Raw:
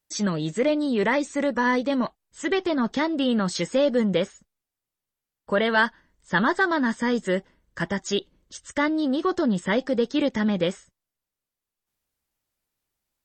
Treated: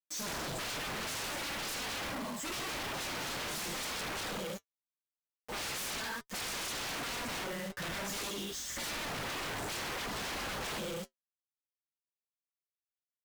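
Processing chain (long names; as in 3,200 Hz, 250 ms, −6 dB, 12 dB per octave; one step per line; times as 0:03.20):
reverb whose tail is shaped and stops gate 360 ms falling, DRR −7 dB
wave folding −23.5 dBFS
log-companded quantiser 2 bits
flanger 0.48 Hz, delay 3.5 ms, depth 4.6 ms, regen −66%
harmonic generator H 5 −20 dB, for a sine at −24.5 dBFS
level −8.5 dB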